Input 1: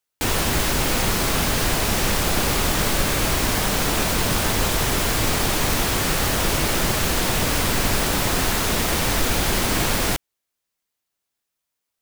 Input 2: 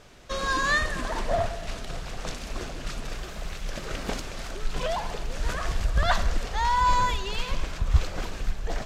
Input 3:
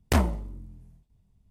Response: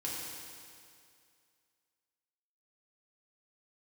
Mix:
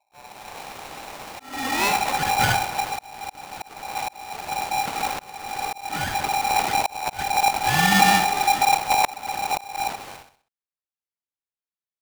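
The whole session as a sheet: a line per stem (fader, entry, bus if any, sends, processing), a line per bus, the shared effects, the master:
-18.0 dB, 0.00 s, no send, echo send -3.5 dB, none
+0.5 dB, 1.10 s, no send, echo send -13.5 dB, square wave that keeps the level; hum notches 50/100/150/200/250/300/350/400/450 Hz
-10.0 dB, 0.00 s, no send, echo send -9 dB, none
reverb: none
echo: feedback delay 64 ms, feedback 38%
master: treble shelf 4.6 kHz -11 dB; slow attack 484 ms; polarity switched at an audio rate 800 Hz

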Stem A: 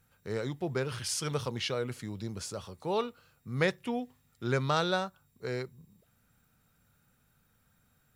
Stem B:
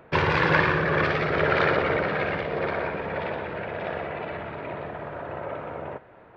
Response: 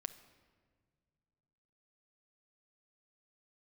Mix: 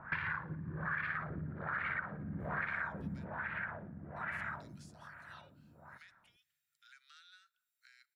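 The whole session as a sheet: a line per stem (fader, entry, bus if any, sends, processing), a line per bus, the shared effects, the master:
-15.0 dB, 2.40 s, muted 3.25–4.16 s, send -7.5 dB, steep high-pass 1.4 kHz 72 dB/octave; compression 3:1, threshold -49 dBFS, peak gain reduction 15.5 dB
3.04 s -0.5 dB -> 3.39 s -8 dB -> 4.52 s -8 dB -> 5.10 s -20 dB, 0.00 s, send -19.5 dB, FFT filter 210 Hz 0 dB, 430 Hz -20 dB, 1.6 kHz +8 dB, 2.6 kHz -3 dB, 4.1 kHz +4 dB; compression 10:1, threshold -30 dBFS, peak gain reduction 18.5 dB; LFO low-pass sine 1.2 Hz 250–2500 Hz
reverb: on, pre-delay 6 ms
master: compression 4:1, threshold -36 dBFS, peak gain reduction 11 dB

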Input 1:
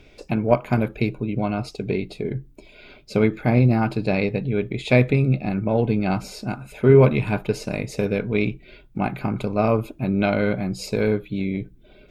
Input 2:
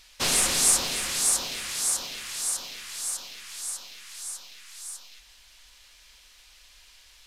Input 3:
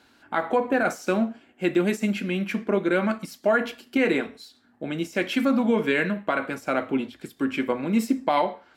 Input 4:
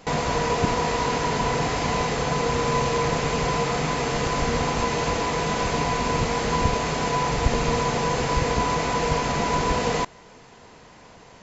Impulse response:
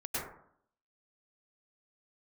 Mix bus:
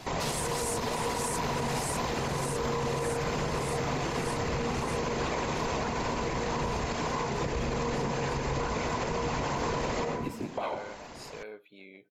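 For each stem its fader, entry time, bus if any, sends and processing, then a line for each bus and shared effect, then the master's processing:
-13.0 dB, 0.40 s, no bus, no send, Chebyshev high-pass 640 Hz, order 2; compression 2:1, threshold -28 dBFS, peak gain reduction 8.5 dB
+0.5 dB, 0.00 s, bus A, no send, none
-3.5 dB, 2.30 s, bus A, send -21 dB, tremolo saw down 1.6 Hz, depth 70%
+2.0 dB, 0.00 s, bus A, send -16 dB, none
bus A: 0.0 dB, whisper effect; compression 3:1, threshold -31 dBFS, peak gain reduction 13 dB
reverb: on, RT60 0.65 s, pre-delay 92 ms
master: peak limiter -22 dBFS, peak gain reduction 8 dB

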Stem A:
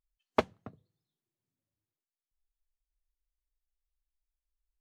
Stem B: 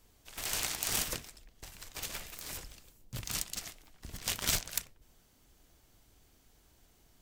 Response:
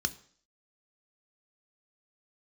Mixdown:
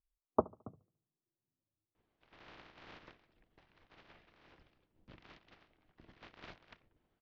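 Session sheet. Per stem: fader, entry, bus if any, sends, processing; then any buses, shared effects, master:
-3.0 dB, 0.00 s, no send, echo send -23.5 dB, steep low-pass 1.3 kHz 72 dB/octave
-14.0 dB, 1.95 s, no send, no echo send, spectral peaks clipped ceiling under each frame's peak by 15 dB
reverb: none
echo: feedback delay 72 ms, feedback 39%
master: Gaussian low-pass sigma 2.9 samples; peaking EQ 330 Hz +4.5 dB 0.23 oct

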